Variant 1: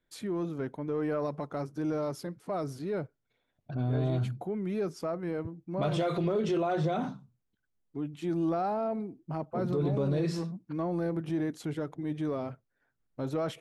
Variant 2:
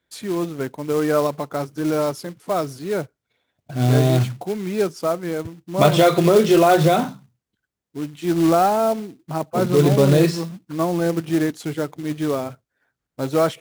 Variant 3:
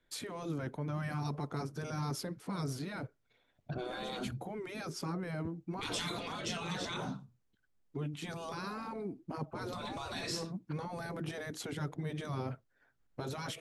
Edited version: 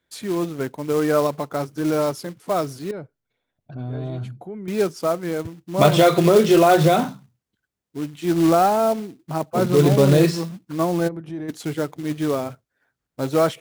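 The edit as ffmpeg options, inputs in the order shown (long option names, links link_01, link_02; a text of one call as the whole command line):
ffmpeg -i take0.wav -i take1.wav -filter_complex "[0:a]asplit=2[link_01][link_02];[1:a]asplit=3[link_03][link_04][link_05];[link_03]atrim=end=2.912[link_06];[link_01]atrim=start=2.908:end=4.682[link_07];[link_04]atrim=start=4.678:end=11.09[link_08];[link_02]atrim=start=11.07:end=11.5[link_09];[link_05]atrim=start=11.48[link_10];[link_06][link_07]acrossfade=duration=0.004:curve1=hsin:curve2=hsin[link_11];[link_11][link_08]acrossfade=duration=0.004:curve1=hsin:curve2=hsin[link_12];[link_12][link_09]acrossfade=duration=0.02:curve1=tri:curve2=tri[link_13];[link_13][link_10]acrossfade=duration=0.02:curve1=tri:curve2=tri" out.wav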